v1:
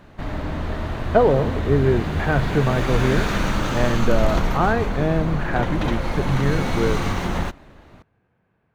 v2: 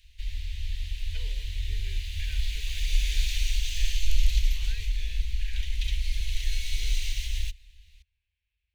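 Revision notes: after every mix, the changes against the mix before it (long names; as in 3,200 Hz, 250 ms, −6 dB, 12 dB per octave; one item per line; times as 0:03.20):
master: add inverse Chebyshev band-stop filter 120–1,400 Hz, stop band 40 dB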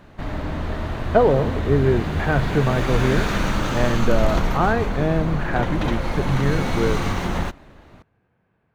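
master: remove inverse Chebyshev band-stop filter 120–1,400 Hz, stop band 40 dB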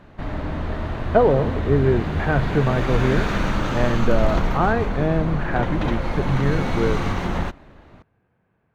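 master: add high-shelf EQ 5,500 Hz −10 dB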